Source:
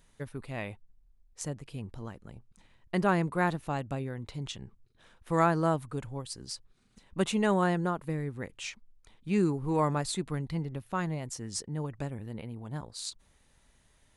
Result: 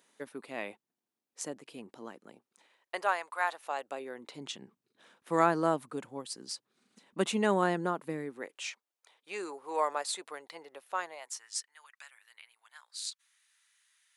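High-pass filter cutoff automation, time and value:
high-pass filter 24 dB per octave
0:02.33 250 Hz
0:03.33 790 Hz
0:04.49 210 Hz
0:08.21 210 Hz
0:08.68 500 Hz
0:11.03 500 Hz
0:11.61 1,400 Hz

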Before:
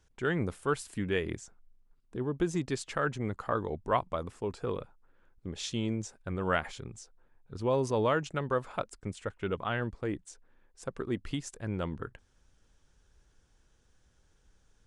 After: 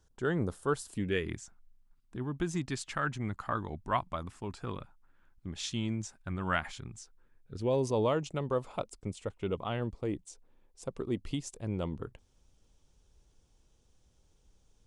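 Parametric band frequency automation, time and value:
parametric band −12 dB 0.66 octaves
0:00.87 2,300 Hz
0:01.32 470 Hz
0:06.91 470 Hz
0:07.96 1,600 Hz

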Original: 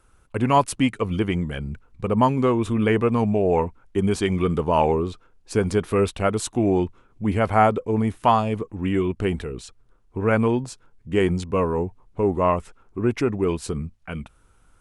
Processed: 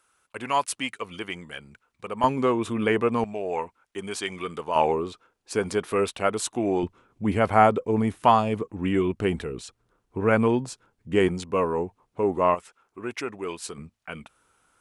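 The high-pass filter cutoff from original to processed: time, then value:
high-pass filter 6 dB per octave
1,400 Hz
from 0:02.24 340 Hz
from 0:03.24 1,300 Hz
from 0:04.76 450 Hz
from 0:06.83 140 Hz
from 0:11.28 330 Hz
from 0:12.55 1,200 Hz
from 0:13.78 520 Hz

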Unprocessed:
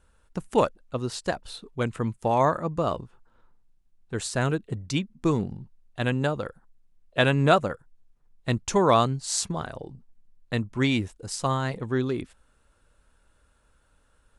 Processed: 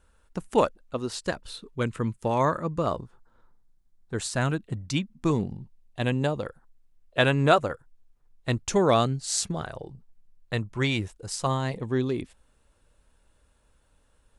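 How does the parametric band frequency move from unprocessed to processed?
parametric band −7.5 dB 0.4 octaves
130 Hz
from 0:01.18 740 Hz
from 0:02.86 2,700 Hz
from 0:04.19 430 Hz
from 0:05.30 1,400 Hz
from 0:06.46 190 Hz
from 0:08.68 1,000 Hz
from 0:09.63 250 Hz
from 0:11.47 1,400 Hz

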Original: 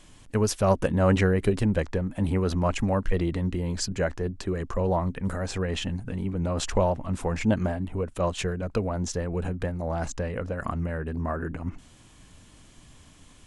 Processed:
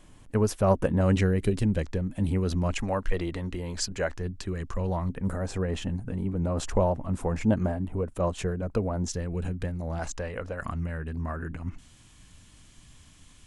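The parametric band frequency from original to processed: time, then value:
parametric band −7.5 dB 2.5 octaves
4,800 Hz
from 0:01.01 1,000 Hz
from 0:02.74 150 Hz
from 0:04.17 550 Hz
from 0:05.09 3,400 Hz
from 0:09.08 800 Hz
from 0:09.99 170 Hz
from 0:10.62 510 Hz

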